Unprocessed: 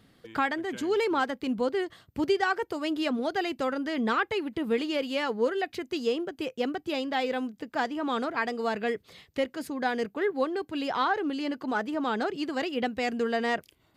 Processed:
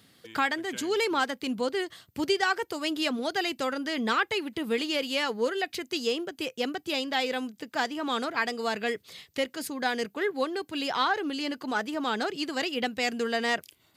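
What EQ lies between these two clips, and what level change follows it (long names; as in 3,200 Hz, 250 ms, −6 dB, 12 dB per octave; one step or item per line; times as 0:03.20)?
high-pass filter 76 Hz
high-shelf EQ 2,400 Hz +12 dB
−2.0 dB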